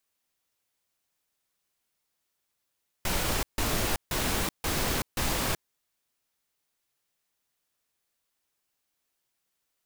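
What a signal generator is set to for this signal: noise bursts pink, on 0.38 s, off 0.15 s, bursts 5, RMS -28 dBFS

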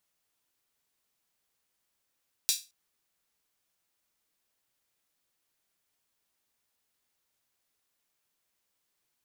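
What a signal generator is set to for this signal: open hi-hat length 0.22 s, high-pass 4.2 kHz, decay 0.27 s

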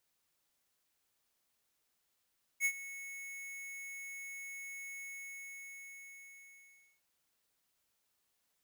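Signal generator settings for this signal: ADSR square 2.2 kHz, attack 52 ms, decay 67 ms, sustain -16.5 dB, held 2.41 s, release 2000 ms -29.5 dBFS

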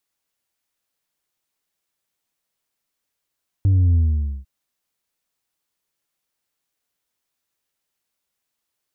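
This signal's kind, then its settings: sub drop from 99 Hz, over 0.80 s, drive 3 dB, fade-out 0.50 s, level -13 dB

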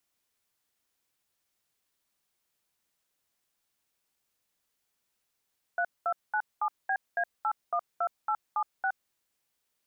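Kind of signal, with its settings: DTMF "3297BA812876", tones 68 ms, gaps 210 ms, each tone -28 dBFS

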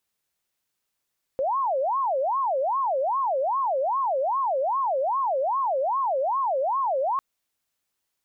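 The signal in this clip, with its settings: siren wail 521–1100 Hz 2.5 per s sine -21.5 dBFS 5.80 s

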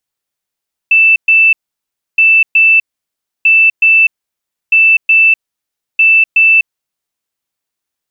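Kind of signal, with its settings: beep pattern sine 2.65 kHz, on 0.25 s, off 0.12 s, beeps 2, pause 0.65 s, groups 5, -4 dBFS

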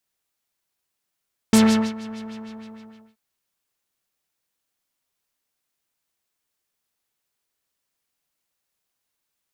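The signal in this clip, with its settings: synth patch with filter wobble A3, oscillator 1 triangle, oscillator 2 saw, interval +12 st, oscillator 2 level -10 dB, sub -26 dB, noise -9 dB, filter lowpass, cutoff 1.6 kHz, Q 1.5, filter envelope 1.5 oct, filter sustain 40%, attack 1.6 ms, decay 0.40 s, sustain -21 dB, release 1.03 s, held 0.60 s, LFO 6.5 Hz, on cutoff 1.2 oct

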